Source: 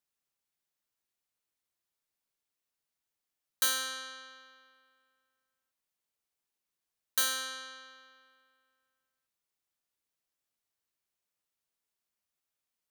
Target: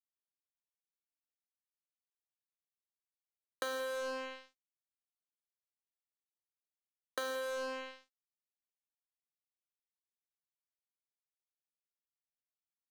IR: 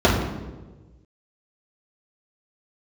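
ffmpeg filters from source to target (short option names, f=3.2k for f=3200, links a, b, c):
-filter_complex "[0:a]bandpass=f=480:t=q:w=1.9:csg=0,aecho=1:1:174|348|522:0.178|0.0462|0.012,asplit=2[a][b];[1:a]atrim=start_sample=2205,adelay=10[c];[b][c]afir=irnorm=-1:irlink=0,volume=-33dB[d];[a][d]amix=inputs=2:normalize=0,acrusher=bits=8:mix=0:aa=0.5,acompressor=threshold=-51dB:ratio=6,volume=16dB"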